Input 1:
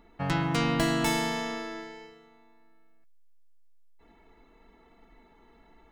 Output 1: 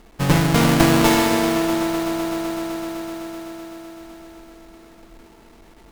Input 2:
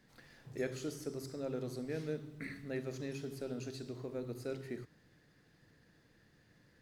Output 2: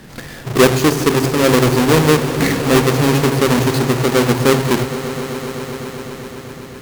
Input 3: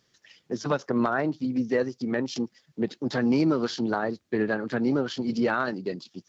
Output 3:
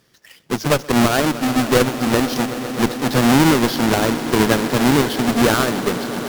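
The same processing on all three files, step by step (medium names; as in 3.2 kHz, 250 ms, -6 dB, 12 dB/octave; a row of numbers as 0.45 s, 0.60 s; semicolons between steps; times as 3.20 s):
square wave that keeps the level; echo with a slow build-up 127 ms, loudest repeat 5, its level -17 dB; Chebyshev shaper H 2 -8 dB, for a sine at -10.5 dBFS; peak normalisation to -2 dBFS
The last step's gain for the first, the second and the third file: +5.5 dB, +23.0 dB, +5.0 dB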